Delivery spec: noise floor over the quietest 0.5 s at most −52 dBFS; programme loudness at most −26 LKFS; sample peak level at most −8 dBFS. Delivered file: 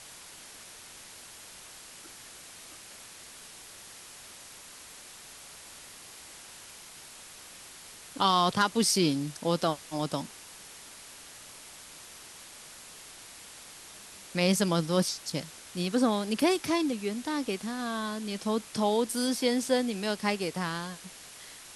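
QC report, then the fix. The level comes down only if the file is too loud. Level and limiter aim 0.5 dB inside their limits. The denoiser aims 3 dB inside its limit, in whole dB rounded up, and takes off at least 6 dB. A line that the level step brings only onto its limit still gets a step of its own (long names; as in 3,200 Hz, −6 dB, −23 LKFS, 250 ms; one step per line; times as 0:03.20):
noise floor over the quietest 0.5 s −49 dBFS: out of spec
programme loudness −29.0 LKFS: in spec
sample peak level −11.5 dBFS: in spec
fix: broadband denoise 6 dB, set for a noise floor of −49 dBFS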